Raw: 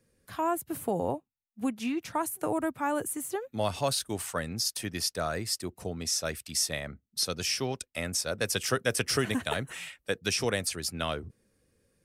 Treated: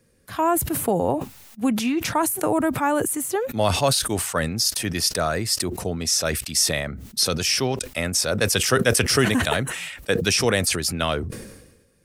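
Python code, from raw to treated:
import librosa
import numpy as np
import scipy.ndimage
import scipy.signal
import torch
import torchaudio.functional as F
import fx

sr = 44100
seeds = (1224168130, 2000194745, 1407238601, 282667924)

y = fx.sustainer(x, sr, db_per_s=52.0)
y = F.gain(torch.from_numpy(y), 8.0).numpy()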